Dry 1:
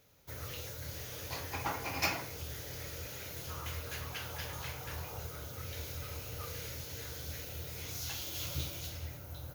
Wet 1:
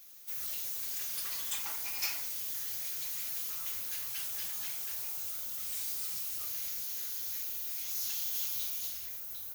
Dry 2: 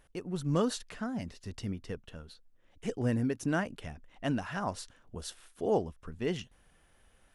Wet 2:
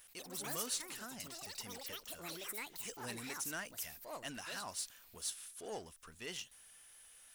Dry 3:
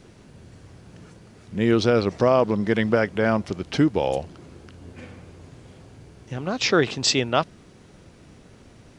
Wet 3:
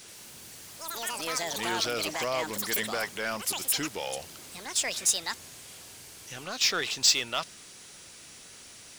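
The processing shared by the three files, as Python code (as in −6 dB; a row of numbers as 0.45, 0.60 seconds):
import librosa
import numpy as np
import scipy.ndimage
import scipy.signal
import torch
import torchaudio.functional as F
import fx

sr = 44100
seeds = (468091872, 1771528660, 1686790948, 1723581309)

y = librosa.effects.preemphasis(x, coef=0.97, zi=[0.0])
y = fx.echo_pitch(y, sr, ms=82, semitones=6, count=3, db_per_echo=-3.0)
y = fx.power_curve(y, sr, exponent=0.7)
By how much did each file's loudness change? +6.0, −8.5, −6.5 LU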